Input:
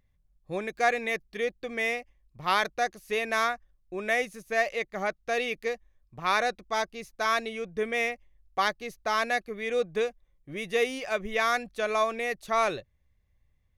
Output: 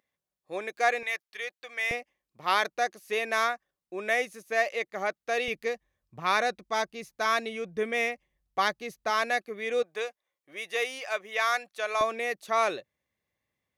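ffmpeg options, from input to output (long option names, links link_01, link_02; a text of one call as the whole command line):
ffmpeg -i in.wav -af "asetnsamples=nb_out_samples=441:pad=0,asendcmd='1.03 highpass f 960;1.91 highpass f 270;5.48 highpass f 97;9.1 highpass f 240;9.83 highpass f 620;12.01 highpass f 260',highpass=390" out.wav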